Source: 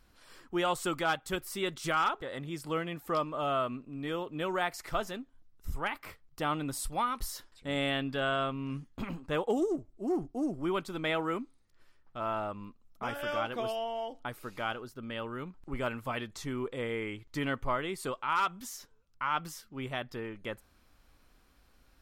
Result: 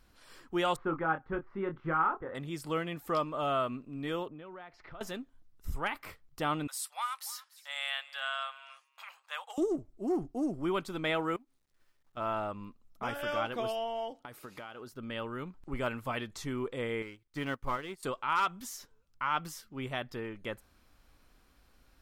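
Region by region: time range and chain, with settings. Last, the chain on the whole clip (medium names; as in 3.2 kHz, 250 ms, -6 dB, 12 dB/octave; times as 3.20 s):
0.76–2.35 s: low-pass 1.6 kHz 24 dB/octave + peaking EQ 640 Hz -8.5 dB 0.22 oct + doubling 25 ms -7 dB
4.28–5.01 s: level-controlled noise filter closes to 1.3 kHz, open at -29.5 dBFS + compression 4:1, threshold -45 dBFS + distance through air 290 m
6.67–9.58 s: Bessel high-pass 1.3 kHz, order 8 + delay 289 ms -19 dB
11.36–12.17 s: companding laws mixed up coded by A + compression 5:1, threshold -57 dBFS
14.12–14.93 s: high-pass 130 Hz 6 dB/octave + compression 10:1, threshold -40 dBFS
17.02–18.03 s: companding laws mixed up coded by A + band-stop 640 Hz, Q 8.4 + upward expansion, over -53 dBFS
whole clip: none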